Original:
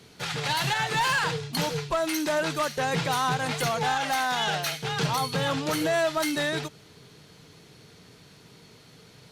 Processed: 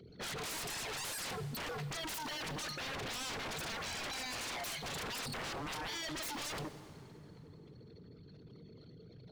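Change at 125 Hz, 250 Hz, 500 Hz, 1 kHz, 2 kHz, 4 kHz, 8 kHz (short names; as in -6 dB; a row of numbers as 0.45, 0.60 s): -14.0, -15.0, -17.0, -17.0, -13.5, -10.5, -8.0 dB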